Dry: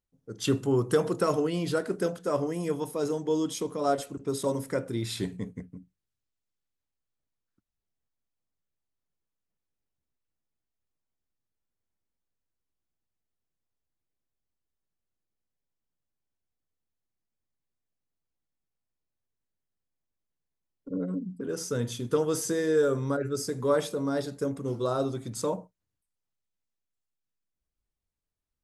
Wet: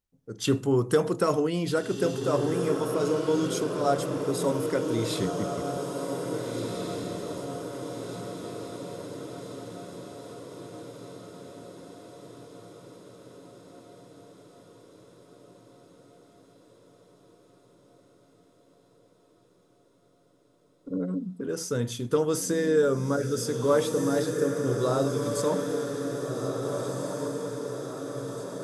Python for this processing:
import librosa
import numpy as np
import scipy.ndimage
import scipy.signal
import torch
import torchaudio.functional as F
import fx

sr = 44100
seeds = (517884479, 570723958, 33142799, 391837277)

y = fx.echo_diffused(x, sr, ms=1736, feedback_pct=61, wet_db=-5)
y = y * librosa.db_to_amplitude(1.5)